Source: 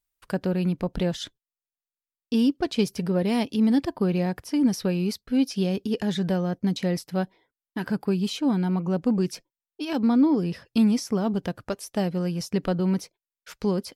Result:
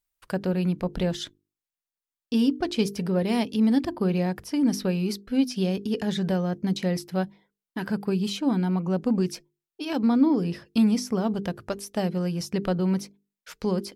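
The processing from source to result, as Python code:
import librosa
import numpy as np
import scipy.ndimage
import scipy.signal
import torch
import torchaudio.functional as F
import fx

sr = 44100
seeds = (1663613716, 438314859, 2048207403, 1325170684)

y = fx.hum_notches(x, sr, base_hz=50, count=9)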